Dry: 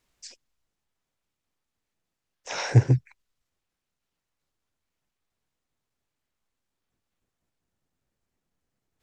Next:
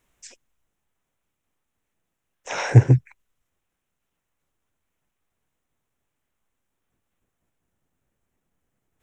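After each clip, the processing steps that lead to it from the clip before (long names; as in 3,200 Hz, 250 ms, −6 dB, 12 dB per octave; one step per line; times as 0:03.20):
parametric band 4,600 Hz −12.5 dB 0.52 octaves
level +5 dB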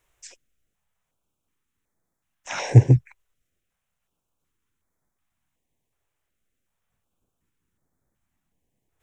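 notch on a step sequencer 2.7 Hz 220–2,800 Hz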